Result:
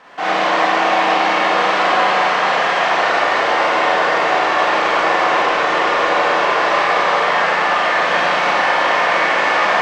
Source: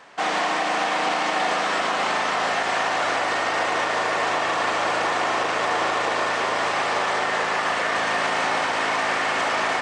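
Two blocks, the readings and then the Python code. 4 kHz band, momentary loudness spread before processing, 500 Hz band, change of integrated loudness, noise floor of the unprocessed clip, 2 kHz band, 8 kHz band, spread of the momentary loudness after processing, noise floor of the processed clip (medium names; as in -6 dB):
+6.0 dB, 1 LU, +8.0 dB, +7.5 dB, -25 dBFS, +7.5 dB, -1.0 dB, 1 LU, -17 dBFS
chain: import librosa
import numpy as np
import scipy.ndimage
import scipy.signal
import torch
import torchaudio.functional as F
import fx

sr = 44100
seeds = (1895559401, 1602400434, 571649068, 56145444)

y = fx.peak_eq(x, sr, hz=89.0, db=-7.5, octaves=1.0)
y = fx.quant_dither(y, sr, seeds[0], bits=10, dither='triangular')
y = fx.air_absorb(y, sr, metres=130.0)
y = fx.rev_schroeder(y, sr, rt60_s=1.3, comb_ms=31, drr_db=-6.0)
y = y * 10.0 ** (2.0 / 20.0)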